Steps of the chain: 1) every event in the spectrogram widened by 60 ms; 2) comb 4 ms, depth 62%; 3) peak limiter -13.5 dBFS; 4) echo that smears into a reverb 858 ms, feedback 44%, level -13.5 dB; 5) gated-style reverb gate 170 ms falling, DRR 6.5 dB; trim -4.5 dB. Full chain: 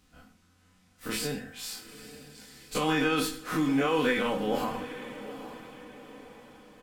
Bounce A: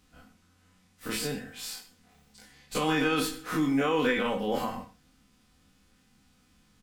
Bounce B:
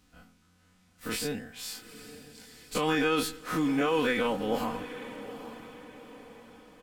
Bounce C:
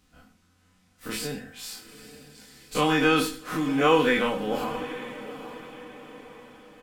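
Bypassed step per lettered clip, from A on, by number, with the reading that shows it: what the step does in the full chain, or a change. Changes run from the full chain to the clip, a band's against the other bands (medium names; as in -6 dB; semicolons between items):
4, momentary loudness spread change -9 LU; 5, echo-to-direct -5.5 dB to -12.5 dB; 3, crest factor change +4.0 dB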